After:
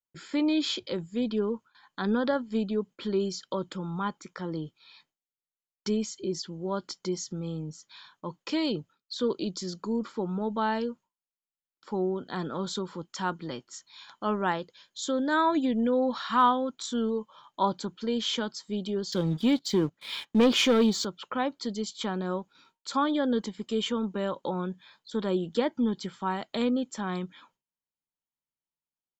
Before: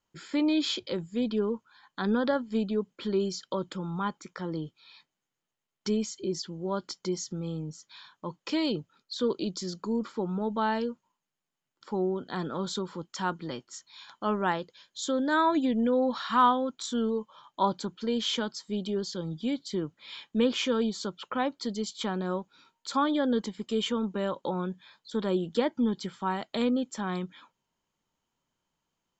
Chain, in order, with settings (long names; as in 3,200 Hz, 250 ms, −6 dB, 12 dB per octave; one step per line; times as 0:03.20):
noise gate with hold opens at −50 dBFS
0:19.12–0:21.05: leveller curve on the samples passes 2